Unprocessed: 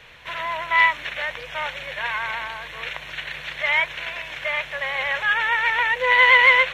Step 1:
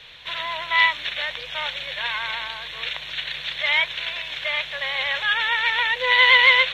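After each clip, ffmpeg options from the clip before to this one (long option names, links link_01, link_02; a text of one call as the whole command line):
ffmpeg -i in.wav -af "equalizer=frequency=3700:width_type=o:width=0.72:gain=14.5,volume=-3.5dB" out.wav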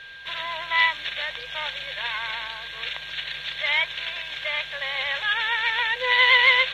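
ffmpeg -i in.wav -af "aeval=exprs='val(0)+0.0126*sin(2*PI*1600*n/s)':channel_layout=same,volume=-2.5dB" out.wav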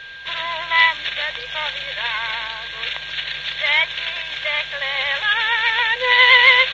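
ffmpeg -i in.wav -af "aresample=16000,aresample=44100,volume=5.5dB" out.wav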